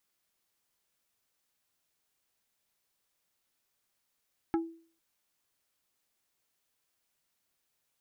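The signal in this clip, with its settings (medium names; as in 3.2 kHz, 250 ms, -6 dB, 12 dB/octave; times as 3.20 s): wood hit plate, lowest mode 330 Hz, decay 0.45 s, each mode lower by 6 dB, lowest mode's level -23.5 dB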